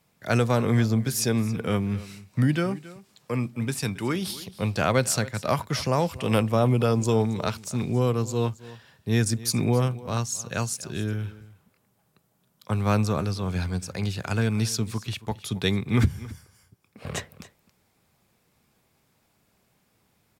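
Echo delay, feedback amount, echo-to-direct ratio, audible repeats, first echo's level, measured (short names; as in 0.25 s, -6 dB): 0.273 s, no steady repeat, -18.5 dB, 1, -18.5 dB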